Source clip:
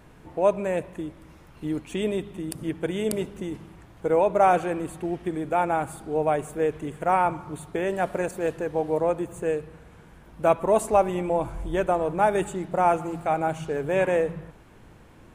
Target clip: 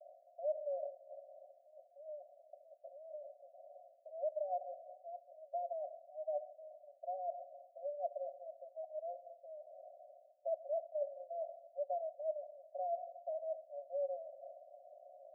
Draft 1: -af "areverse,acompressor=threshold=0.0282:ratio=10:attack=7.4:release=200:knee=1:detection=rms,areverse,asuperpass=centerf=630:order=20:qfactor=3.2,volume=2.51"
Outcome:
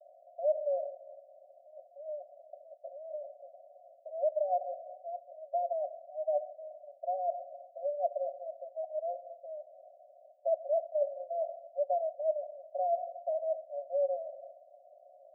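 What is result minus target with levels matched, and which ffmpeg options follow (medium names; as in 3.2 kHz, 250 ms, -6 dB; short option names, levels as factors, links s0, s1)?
compression: peak gain reduction -8 dB
-af "areverse,acompressor=threshold=0.01:ratio=10:attack=7.4:release=200:knee=1:detection=rms,areverse,asuperpass=centerf=630:order=20:qfactor=3.2,volume=2.51"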